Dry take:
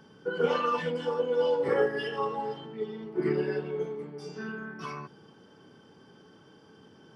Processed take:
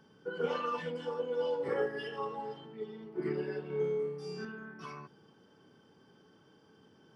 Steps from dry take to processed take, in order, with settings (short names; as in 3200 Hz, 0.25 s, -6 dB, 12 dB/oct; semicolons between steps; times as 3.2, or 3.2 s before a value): 3.67–4.45 flutter echo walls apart 4.8 m, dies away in 0.73 s; gain -7 dB